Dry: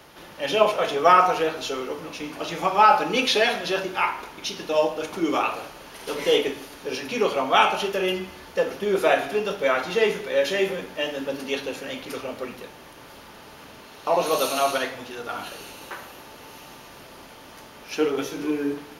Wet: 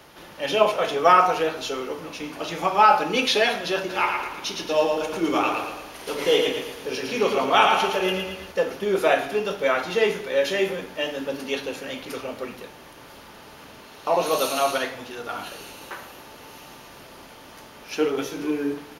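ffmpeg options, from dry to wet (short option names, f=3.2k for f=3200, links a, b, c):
-filter_complex "[0:a]asplit=3[a][b][c];[a]afade=t=out:st=3.89:d=0.02[d];[b]aecho=1:1:113|226|339|452|565|678:0.596|0.274|0.126|0.058|0.0267|0.0123,afade=t=in:st=3.89:d=0.02,afade=t=out:st=8.51:d=0.02[e];[c]afade=t=in:st=8.51:d=0.02[f];[d][e][f]amix=inputs=3:normalize=0"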